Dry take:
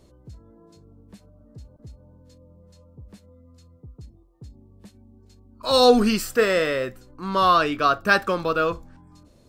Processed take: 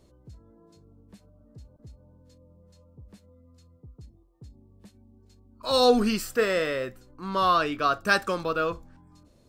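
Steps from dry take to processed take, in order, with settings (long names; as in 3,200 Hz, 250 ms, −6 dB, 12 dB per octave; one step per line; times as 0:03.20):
0:07.92–0:08.43: parametric band 7,800 Hz +8 dB 1.3 octaves
level −4.5 dB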